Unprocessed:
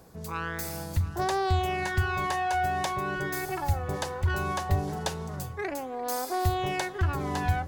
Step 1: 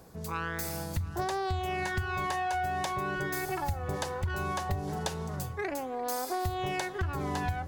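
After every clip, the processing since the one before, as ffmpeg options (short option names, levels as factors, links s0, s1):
-af "acompressor=threshold=0.0398:ratio=6"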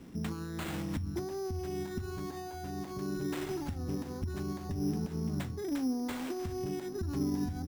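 -af "alimiter=level_in=1.5:limit=0.0631:level=0:latency=1:release=101,volume=0.668,firequalizer=gain_entry='entry(130,0);entry(250,14);entry(520,-10);entry(5500,-23);entry(11000,3)':delay=0.05:min_phase=1,acrusher=samples=8:mix=1:aa=0.000001"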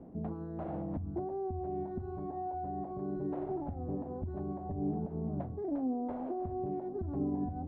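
-af "areverse,acompressor=mode=upward:threshold=0.0141:ratio=2.5,areverse,lowpass=f=680:t=q:w=3.7,volume=0.708"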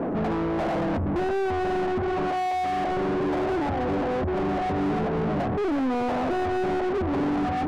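-filter_complex "[0:a]asplit=2[s0][s1];[s1]highpass=f=720:p=1,volume=100,asoftclip=type=tanh:threshold=0.075[s2];[s0][s2]amix=inputs=2:normalize=0,lowpass=f=1200:p=1,volume=0.501,volume=1.58"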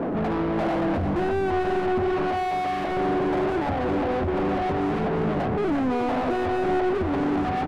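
-filter_complex "[0:a]asplit=2[s0][s1];[s1]asoftclip=type=tanh:threshold=0.02,volume=0.398[s2];[s0][s2]amix=inputs=2:normalize=0,aecho=1:1:347:0.398" -ar 44100 -c:a libmp3lame -b:a 160k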